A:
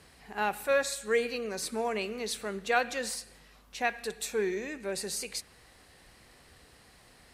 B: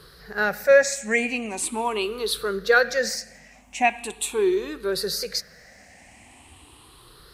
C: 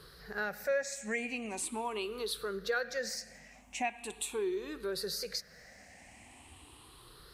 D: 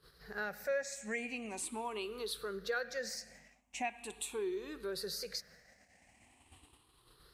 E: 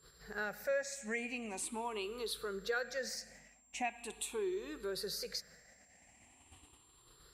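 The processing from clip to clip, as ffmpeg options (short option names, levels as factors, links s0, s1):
-af "afftfilt=real='re*pow(10,15/40*sin(2*PI*(0.61*log(max(b,1)*sr/1024/100)/log(2)-(0.41)*(pts-256)/sr)))':imag='im*pow(10,15/40*sin(2*PI*(0.61*log(max(b,1)*sr/1024/100)/log(2)-(0.41)*(pts-256)/sr)))':win_size=1024:overlap=0.75,volume=1.78"
-af "acompressor=threshold=0.0251:ratio=2,volume=0.531"
-af "agate=range=0.2:threshold=0.002:ratio=16:detection=peak,volume=0.668"
-af "aeval=exprs='val(0)+0.000501*sin(2*PI*7400*n/s)':c=same"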